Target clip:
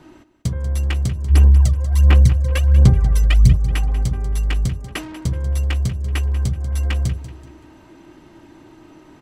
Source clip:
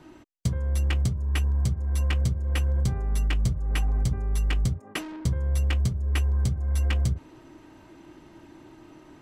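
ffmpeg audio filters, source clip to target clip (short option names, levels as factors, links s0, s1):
-filter_complex "[0:a]asplit=3[s0][s1][s2];[s0]afade=t=out:st=1.29:d=0.02[s3];[s1]aphaser=in_gain=1:out_gain=1:delay=2:decay=0.71:speed=1.4:type=sinusoidal,afade=t=in:st=1.29:d=0.02,afade=t=out:st=3.55:d=0.02[s4];[s2]afade=t=in:st=3.55:d=0.02[s5];[s3][s4][s5]amix=inputs=3:normalize=0,aecho=1:1:190|380|570:0.2|0.0658|0.0217,volume=1.58"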